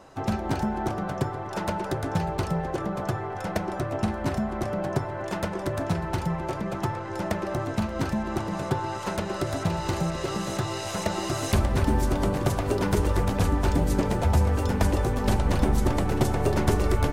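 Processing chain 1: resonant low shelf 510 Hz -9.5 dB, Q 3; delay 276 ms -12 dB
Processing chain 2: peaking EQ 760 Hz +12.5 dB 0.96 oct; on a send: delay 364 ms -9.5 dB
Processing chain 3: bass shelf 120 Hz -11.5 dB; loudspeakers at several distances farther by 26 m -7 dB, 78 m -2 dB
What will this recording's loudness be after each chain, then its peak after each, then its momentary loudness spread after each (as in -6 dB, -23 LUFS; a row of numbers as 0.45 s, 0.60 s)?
-28.5 LUFS, -22.5 LUFS, -27.0 LUFS; -7.0 dBFS, -3.5 dBFS, -9.5 dBFS; 3 LU, 4 LU, 5 LU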